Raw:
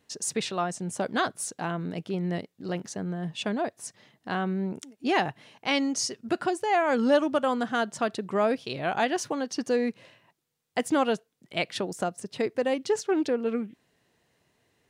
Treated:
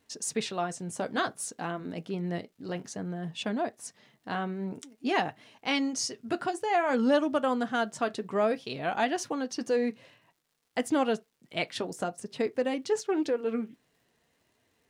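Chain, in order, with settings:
surface crackle 250 per second −58 dBFS
flanger 0.55 Hz, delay 2.8 ms, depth 4.9 ms, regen −61%
on a send: convolution reverb, pre-delay 3 ms, DRR 16.5 dB
on the sum: level +1.5 dB

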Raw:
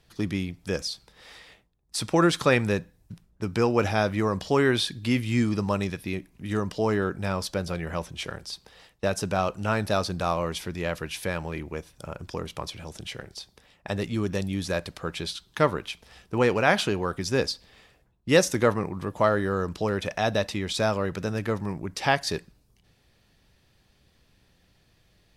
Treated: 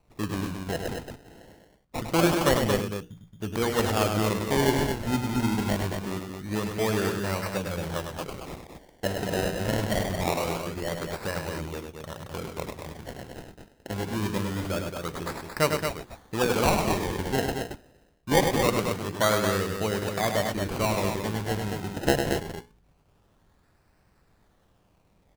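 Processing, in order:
mains-hum notches 60/120/180/240/300/360/420/480 Hz
sample-and-hold swept by an LFO 26×, swing 100% 0.24 Hz
on a send: loudspeakers that aren't time-aligned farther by 35 metres −6 dB, 77 metres −6 dB
on the sum: level −2 dB

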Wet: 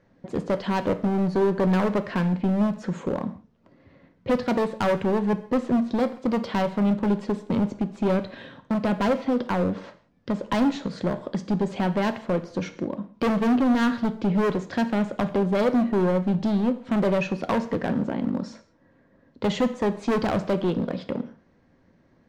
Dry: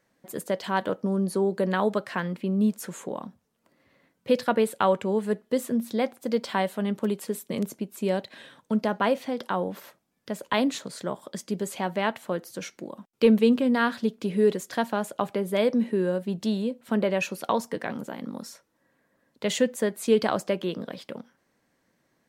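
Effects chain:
low-pass filter 6,000 Hz 24 dB per octave
spectral tilt −3 dB per octave
in parallel at −1 dB: downward compressor, threshold −29 dBFS, peak gain reduction 18 dB
on the sum: hard clipping −19 dBFS, distortion −7 dB
reverb whose tail is shaped and stops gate 210 ms falling, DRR 10 dB

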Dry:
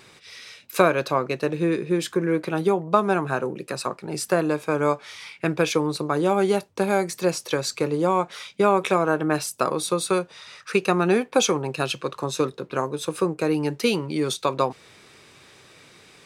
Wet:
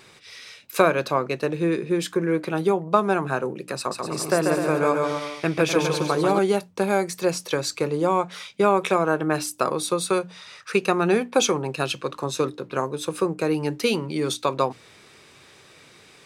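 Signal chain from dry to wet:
mains-hum notches 60/120/180/240/300 Hz
0:03.77–0:06.39: bouncing-ball delay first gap 140 ms, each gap 0.8×, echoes 5

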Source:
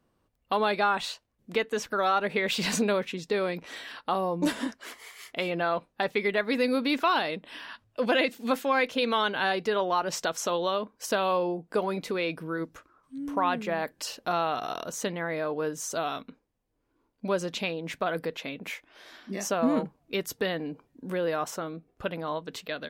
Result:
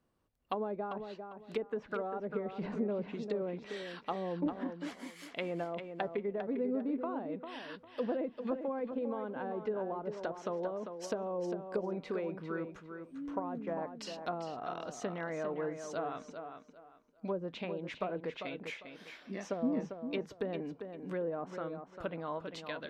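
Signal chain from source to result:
treble cut that deepens with the level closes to 530 Hz, closed at −23.5 dBFS
tape delay 399 ms, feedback 26%, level −7 dB, low-pass 4,700 Hz
level −6.5 dB

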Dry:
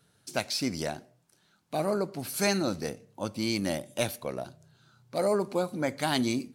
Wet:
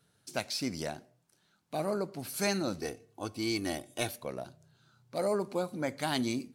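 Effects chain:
0:02.79–0:04.09: comb filter 2.7 ms, depth 63%
level −4 dB

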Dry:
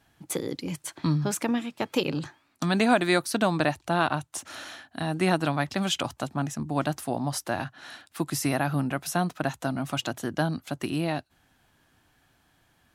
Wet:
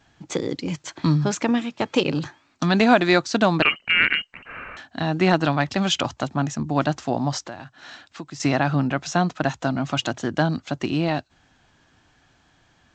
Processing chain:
0:03.62–0:04.77: voice inversion scrambler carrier 3,000 Hz
0:07.47–0:08.40: downward compressor 2.5 to 1, threshold −44 dBFS, peak gain reduction 14.5 dB
level +5.5 dB
G.722 64 kbit/s 16,000 Hz

